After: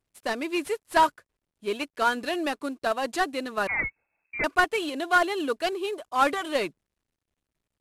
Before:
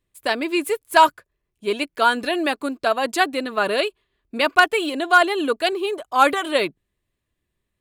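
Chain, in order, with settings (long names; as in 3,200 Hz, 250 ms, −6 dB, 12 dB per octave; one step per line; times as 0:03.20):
variable-slope delta modulation 64 kbit/s
0:03.67–0:04.44: voice inversion scrambler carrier 2,600 Hz
level −6 dB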